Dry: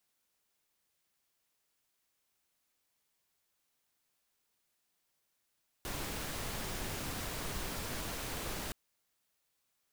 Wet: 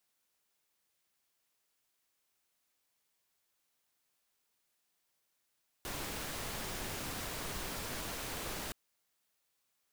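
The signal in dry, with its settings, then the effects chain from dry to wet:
noise pink, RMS −39.5 dBFS 2.87 s
low-shelf EQ 220 Hz −4 dB

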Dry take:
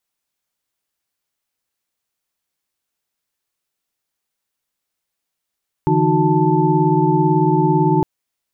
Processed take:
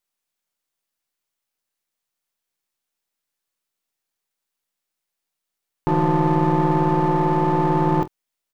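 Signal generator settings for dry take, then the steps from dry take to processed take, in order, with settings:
held notes D3/E3/D#4/F#4/A5 sine, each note −18.5 dBFS 2.16 s
gain on one half-wave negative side −12 dB
low-shelf EQ 75 Hz −9 dB
on a send: ambience of single reflections 25 ms −13 dB, 47 ms −18 dB

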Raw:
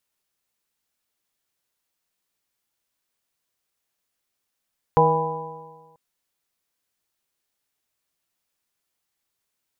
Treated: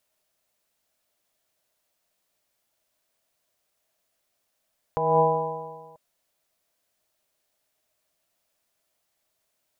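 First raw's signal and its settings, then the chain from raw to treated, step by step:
stiff-string partials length 0.99 s, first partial 158 Hz, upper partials −10/4.5/−9/2.5/4 dB, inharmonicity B 0.0025, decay 1.41 s, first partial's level −20 dB
parametric band 630 Hz +12 dB 0.35 octaves
compressor whose output falls as the input rises −21 dBFS, ratio −1

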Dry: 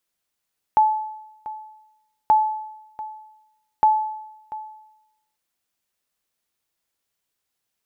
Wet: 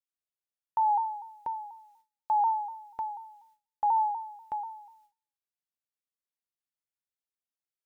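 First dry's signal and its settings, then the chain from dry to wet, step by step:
ping with an echo 864 Hz, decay 0.91 s, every 1.53 s, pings 3, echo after 0.69 s, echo −17 dB −9.5 dBFS
noise gate with hold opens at −56 dBFS
brickwall limiter −21 dBFS
pitch modulation by a square or saw wave saw down 4.1 Hz, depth 100 cents

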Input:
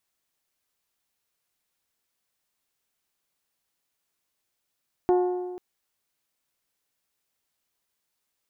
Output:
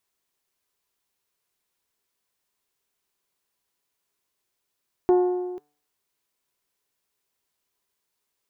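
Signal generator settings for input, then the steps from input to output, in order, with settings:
struck metal bell, length 0.49 s, lowest mode 361 Hz, modes 6, decay 1.51 s, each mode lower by 7.5 dB, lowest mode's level −16.5 dB
hum removal 147.5 Hz, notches 12
hollow resonant body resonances 400/1,000 Hz, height 7 dB

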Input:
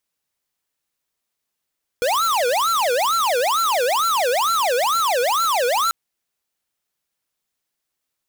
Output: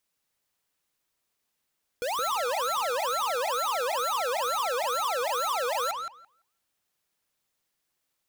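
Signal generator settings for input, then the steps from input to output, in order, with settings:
siren wail 477–1,360 Hz 2.2 per second square −19 dBFS 3.89 s
brickwall limiter −29.5 dBFS
on a send: feedback echo with a low-pass in the loop 169 ms, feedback 15%, low-pass 3,000 Hz, level −3.5 dB

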